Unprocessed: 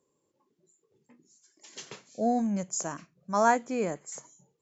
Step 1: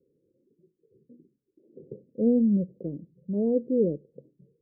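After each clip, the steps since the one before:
Chebyshev low-pass filter 520 Hz, order 6
level +7.5 dB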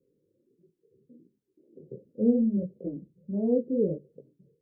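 micro pitch shift up and down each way 50 cents
level +2.5 dB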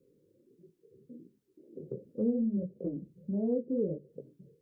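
downward compressor 2 to 1, threshold −41 dBFS, peak gain reduction 13 dB
level +5 dB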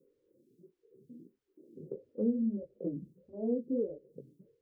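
phaser with staggered stages 1.6 Hz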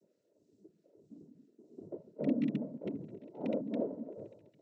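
loose part that buzzes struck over −34 dBFS, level −32 dBFS
echo through a band-pass that steps 133 ms, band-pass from 200 Hz, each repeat 0.7 octaves, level −7 dB
cochlear-implant simulation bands 12
level −2.5 dB

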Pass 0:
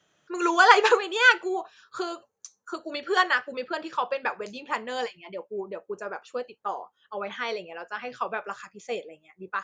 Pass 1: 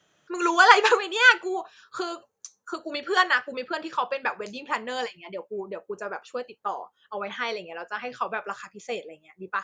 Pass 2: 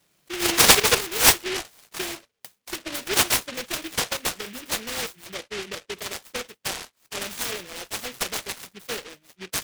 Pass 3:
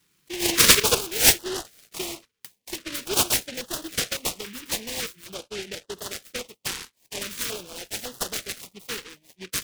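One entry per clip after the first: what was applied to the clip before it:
dynamic equaliser 470 Hz, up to −3 dB, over −33 dBFS, Q 0.83; level +2 dB
short delay modulated by noise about 2,300 Hz, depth 0.34 ms
notch on a step sequencer 3.6 Hz 650–2,300 Hz

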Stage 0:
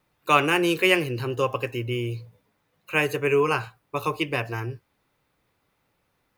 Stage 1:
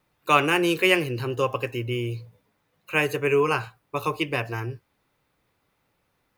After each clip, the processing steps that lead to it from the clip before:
no processing that can be heard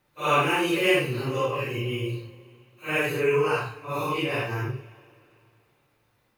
random phases in long frames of 200 ms
in parallel at 0 dB: downward compressor, threshold −30 dBFS, peak gain reduction 14.5 dB
on the sum: coupled-rooms reverb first 0.33 s, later 2.8 s, from −16 dB, DRR 8.5 dB
level −4.5 dB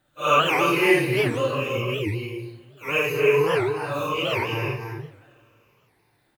rippled gain that drifts along the octave scale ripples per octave 0.82, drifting −0.79 Hz, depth 10 dB
on a send: single-tap delay 299 ms −5 dB
on the sum: wow of a warped record 78 rpm, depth 250 cents

